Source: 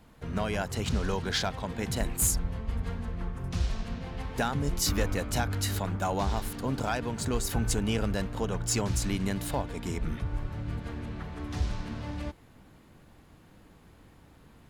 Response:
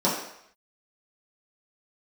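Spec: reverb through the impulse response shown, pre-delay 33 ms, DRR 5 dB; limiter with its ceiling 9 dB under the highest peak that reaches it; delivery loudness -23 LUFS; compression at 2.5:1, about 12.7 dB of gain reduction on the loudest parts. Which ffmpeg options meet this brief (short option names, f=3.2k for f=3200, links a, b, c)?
-filter_complex "[0:a]acompressor=threshold=-43dB:ratio=2.5,alimiter=level_in=12dB:limit=-24dB:level=0:latency=1,volume=-12dB,asplit=2[a][b];[1:a]atrim=start_sample=2205,adelay=33[c];[b][c]afir=irnorm=-1:irlink=0,volume=-20dB[d];[a][d]amix=inputs=2:normalize=0,volume=21.5dB"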